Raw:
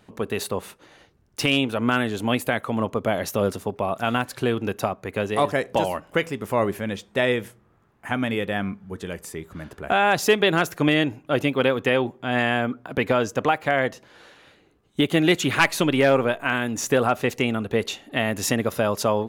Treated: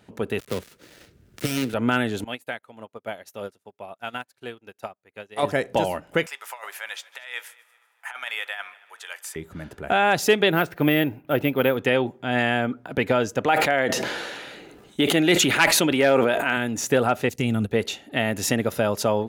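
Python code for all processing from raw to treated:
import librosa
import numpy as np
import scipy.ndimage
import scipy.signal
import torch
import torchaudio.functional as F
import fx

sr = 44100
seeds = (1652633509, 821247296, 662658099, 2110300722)

y = fx.chain(x, sr, fx.dead_time(dead_ms=0.18),
    fx.peak_eq(hz=820.0, db=-10.0, octaves=0.56),
    fx.band_squash(depth_pct=40), at=(0.39, 1.74))
y = fx.chain(y, sr, fx.low_shelf(hz=410.0, db=-11.0),
    fx.upward_expand(threshold_db=-44.0, expansion=2.5), at=(2.24, 5.43))
y = fx.chain(y, sr, fx.highpass(hz=900.0, slope=24),
    fx.over_compress(threshold_db=-32.0, ratio=-0.5),
    fx.echo_heads(ms=77, heads='second and third', feedback_pct=44, wet_db=-23.0), at=(6.26, 9.36))
y = fx.chain(y, sr, fx.block_float(bits=7),
    fx.lowpass(hz=3300.0, slope=12),
    fx.resample_bad(factor=3, down='none', up='hold'), at=(10.51, 11.77))
y = fx.chain(y, sr, fx.peak_eq(hz=78.0, db=-12.0, octaves=1.6),
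    fx.sustainer(db_per_s=28.0), at=(13.46, 16.57))
y = fx.chain(y, sr, fx.bass_treble(bass_db=12, treble_db=10),
    fx.level_steps(step_db=11),
    fx.upward_expand(threshold_db=-33.0, expansion=1.5), at=(17.29, 17.72))
y = scipy.signal.sosfilt(scipy.signal.butter(2, 41.0, 'highpass', fs=sr, output='sos'), y)
y = fx.notch(y, sr, hz=1100.0, q=7.0)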